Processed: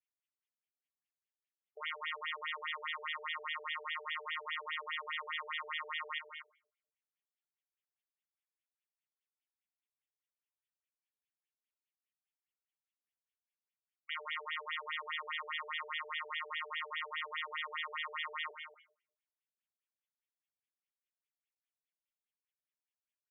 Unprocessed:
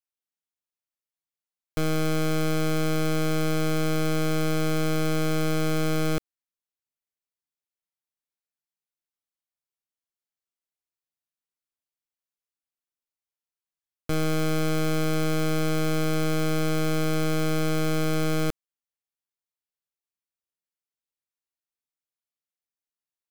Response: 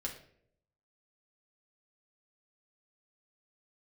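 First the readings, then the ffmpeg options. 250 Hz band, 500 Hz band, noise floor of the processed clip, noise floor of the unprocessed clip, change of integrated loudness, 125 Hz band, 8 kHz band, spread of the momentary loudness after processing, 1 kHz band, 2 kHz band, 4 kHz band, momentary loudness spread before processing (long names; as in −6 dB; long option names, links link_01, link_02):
below −40 dB, −25.0 dB, below −85 dBFS, below −85 dBFS, −13.0 dB, below −40 dB, below −40 dB, 3 LU, −8.0 dB, −4.0 dB, −6.5 dB, 3 LU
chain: -filter_complex "[0:a]afreqshift=-180,aderivative,aecho=1:1:202|237:0.126|0.355,asplit=2[link_01][link_02];[1:a]atrim=start_sample=2205,lowpass=5700[link_03];[link_02][link_03]afir=irnorm=-1:irlink=0,volume=-4dB[link_04];[link_01][link_04]amix=inputs=2:normalize=0,afftfilt=real='re*between(b*sr/1024,520*pow(2600/520,0.5+0.5*sin(2*PI*4.9*pts/sr))/1.41,520*pow(2600/520,0.5+0.5*sin(2*PI*4.9*pts/sr))*1.41)':imag='im*between(b*sr/1024,520*pow(2600/520,0.5+0.5*sin(2*PI*4.9*pts/sr))/1.41,520*pow(2600/520,0.5+0.5*sin(2*PI*4.9*pts/sr))*1.41)':win_size=1024:overlap=0.75,volume=9.5dB"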